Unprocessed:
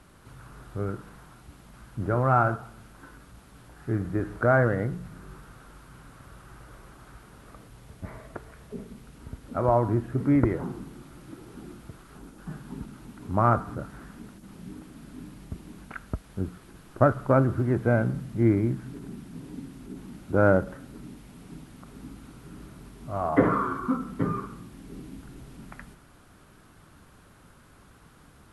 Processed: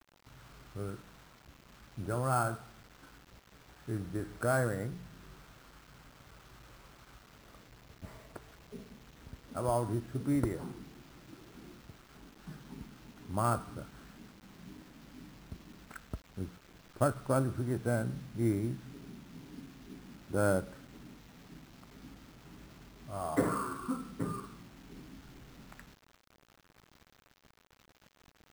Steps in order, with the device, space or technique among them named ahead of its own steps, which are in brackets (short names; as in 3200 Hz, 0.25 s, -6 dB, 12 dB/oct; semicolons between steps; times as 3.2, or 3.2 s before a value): early 8-bit sampler (sample-rate reducer 9600 Hz, jitter 0%; bit-crush 8-bit); gain -9 dB